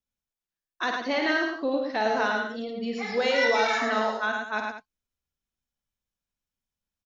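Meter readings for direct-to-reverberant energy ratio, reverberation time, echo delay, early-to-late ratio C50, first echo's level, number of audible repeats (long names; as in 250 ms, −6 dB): no reverb audible, no reverb audible, 51 ms, no reverb audible, −6.5 dB, 3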